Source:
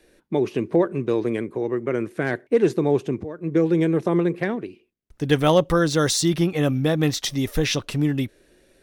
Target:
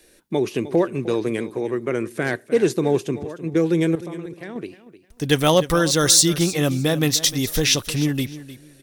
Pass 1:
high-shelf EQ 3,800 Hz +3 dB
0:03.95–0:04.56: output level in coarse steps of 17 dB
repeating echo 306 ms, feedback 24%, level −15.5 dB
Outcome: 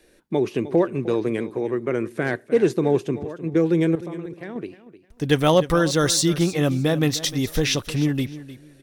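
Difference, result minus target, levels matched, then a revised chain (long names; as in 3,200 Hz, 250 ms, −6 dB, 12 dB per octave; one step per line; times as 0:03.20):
8,000 Hz band −6.0 dB
high-shelf EQ 3,800 Hz +13 dB
0:03.95–0:04.56: output level in coarse steps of 17 dB
repeating echo 306 ms, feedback 24%, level −15.5 dB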